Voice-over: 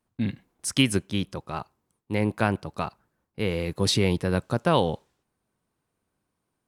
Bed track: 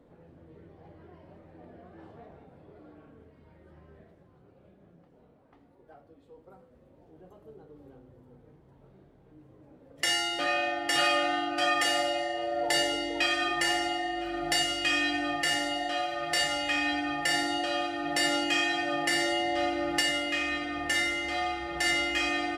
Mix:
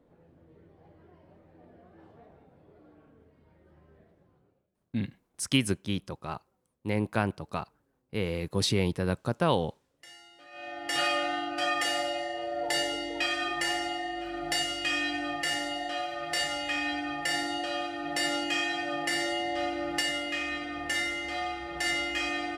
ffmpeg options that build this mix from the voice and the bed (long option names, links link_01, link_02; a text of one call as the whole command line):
ffmpeg -i stem1.wav -i stem2.wav -filter_complex "[0:a]adelay=4750,volume=-4dB[link_01];[1:a]volume=16.5dB,afade=type=out:start_time=4.3:duration=0.37:silence=0.112202,afade=type=in:start_time=10.51:duration=0.48:silence=0.0841395[link_02];[link_01][link_02]amix=inputs=2:normalize=0" out.wav